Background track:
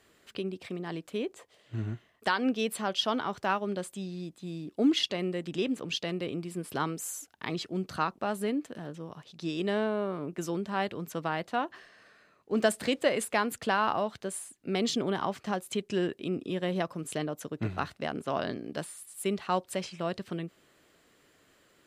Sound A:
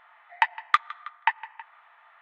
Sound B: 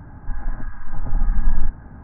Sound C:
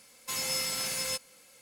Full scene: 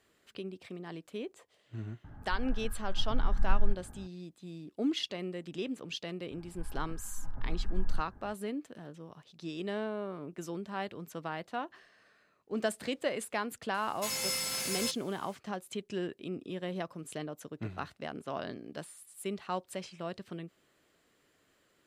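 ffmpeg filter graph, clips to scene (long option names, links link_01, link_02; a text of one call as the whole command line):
ffmpeg -i bed.wav -i cue0.wav -i cue1.wav -i cue2.wav -filter_complex "[2:a]asplit=2[link_01][link_02];[0:a]volume=-6.5dB[link_03];[link_01]bandreject=frequency=1000:width=12,atrim=end=2.03,asetpts=PTS-STARTPTS,volume=-10dB,afade=type=in:duration=0.004:curve=hsin,afade=type=out:start_time=2.026:duration=0.004:curve=hsin,adelay=2040[link_04];[link_02]atrim=end=2.03,asetpts=PTS-STARTPTS,volume=-15dB,afade=type=in:duration=0.004:curve=hsin,afade=type=out:start_time=2.026:duration=0.004:curve=hsin,adelay=6310[link_05];[3:a]atrim=end=1.61,asetpts=PTS-STARTPTS,volume=-2dB,afade=type=in:duration=0.004:curve=hsin,afade=type=out:start_time=1.606:duration=0.004:curve=hsin,adelay=13740[link_06];[link_03][link_04][link_05][link_06]amix=inputs=4:normalize=0" out.wav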